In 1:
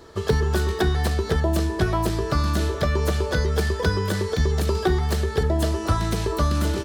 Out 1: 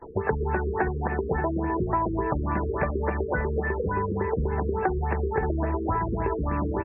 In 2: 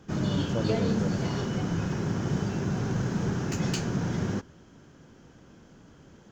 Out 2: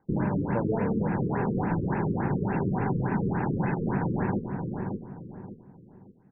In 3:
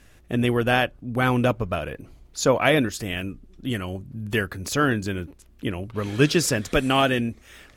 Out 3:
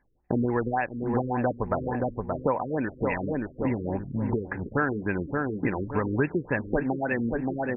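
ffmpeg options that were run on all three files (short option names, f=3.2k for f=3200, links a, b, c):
-filter_complex "[0:a]equalizer=f=79:t=o:w=1.7:g=-5.5,asplit=2[a][b];[b]aeval=exprs='val(0)*gte(abs(val(0)),0.0224)':c=same,volume=-10dB[c];[a][c]amix=inputs=2:normalize=0,superequalizer=9b=2.51:11b=1.58,agate=range=-22dB:threshold=-46dB:ratio=16:detection=peak,asplit=2[d][e];[e]adelay=575,lowpass=f=1.1k:p=1,volume=-10dB,asplit=2[f][g];[g]adelay=575,lowpass=f=1.1k:p=1,volume=0.35,asplit=2[h][i];[i]adelay=575,lowpass=f=1.1k:p=1,volume=0.35,asplit=2[j][k];[k]adelay=575,lowpass=f=1.1k:p=1,volume=0.35[l];[d][f][h][j][l]amix=inputs=5:normalize=0,acompressor=threshold=-30dB:ratio=5,afftfilt=real='re*lt(b*sr/1024,490*pow(2800/490,0.5+0.5*sin(2*PI*3.5*pts/sr)))':imag='im*lt(b*sr/1024,490*pow(2800/490,0.5+0.5*sin(2*PI*3.5*pts/sr)))':win_size=1024:overlap=0.75,volume=6.5dB"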